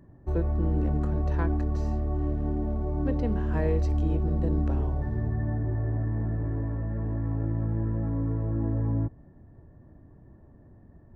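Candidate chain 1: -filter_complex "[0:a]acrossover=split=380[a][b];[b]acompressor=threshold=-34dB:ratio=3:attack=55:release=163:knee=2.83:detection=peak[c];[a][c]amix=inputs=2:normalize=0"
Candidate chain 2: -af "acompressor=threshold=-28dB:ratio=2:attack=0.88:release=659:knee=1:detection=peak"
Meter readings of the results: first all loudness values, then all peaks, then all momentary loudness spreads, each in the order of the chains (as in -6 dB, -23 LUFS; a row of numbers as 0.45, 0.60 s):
-28.5, -33.0 LUFS; -14.5, -20.5 dBFS; 4, 2 LU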